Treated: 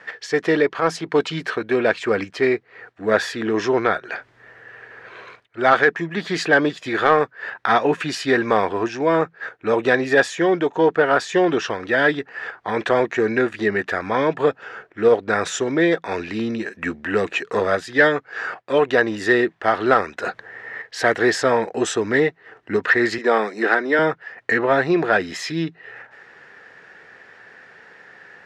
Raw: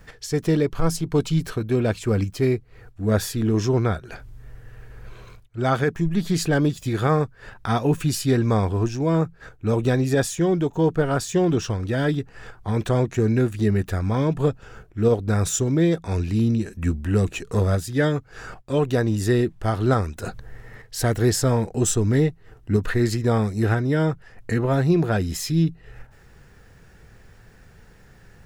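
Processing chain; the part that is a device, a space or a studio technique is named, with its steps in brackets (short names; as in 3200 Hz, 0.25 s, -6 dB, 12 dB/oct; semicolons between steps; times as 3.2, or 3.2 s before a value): intercom (BPF 450–3500 Hz; bell 1800 Hz +7.5 dB 0.48 oct; soft clip -11 dBFS, distortion -24 dB); 23.18–23.99 HPF 220 Hz 24 dB/oct; gain +8.5 dB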